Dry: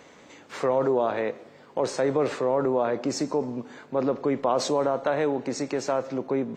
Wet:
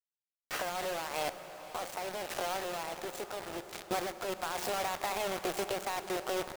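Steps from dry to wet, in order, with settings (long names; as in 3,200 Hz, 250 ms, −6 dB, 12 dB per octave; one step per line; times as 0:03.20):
stylus tracing distortion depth 0.14 ms
high-pass filter 190 Hz 6 dB per octave
low-pass that shuts in the quiet parts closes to 900 Hz, open at −23.5 dBFS
noise gate with hold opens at −41 dBFS
automatic gain control gain up to 3.5 dB
in parallel at +2.5 dB: brickwall limiter −18.5 dBFS, peak gain reduction 11 dB
on the sum: downward compressor 10 to 1, threshold −27 dBFS, peak gain reduction 15 dB
pitch shifter +5.5 semitones
bit reduction 5 bits
sample-and-hold tremolo
feedback delay with all-pass diffusion 536 ms, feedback 41%, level −14.5 dB
convolution reverb RT60 5.6 s, pre-delay 23 ms, DRR 12 dB
level −4 dB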